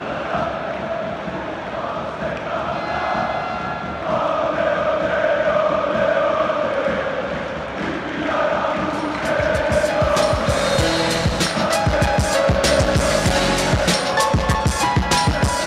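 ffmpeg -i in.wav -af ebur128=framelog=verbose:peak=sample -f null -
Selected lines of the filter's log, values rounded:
Integrated loudness:
  I:         -19.5 LUFS
  Threshold: -29.4 LUFS
Loudness range:
  LRA:         6.5 LU
  Threshold: -39.4 LUFS
  LRA low:   -23.8 LUFS
  LRA high:  -17.2 LUFS
Sample peak:
  Peak:       -3.9 dBFS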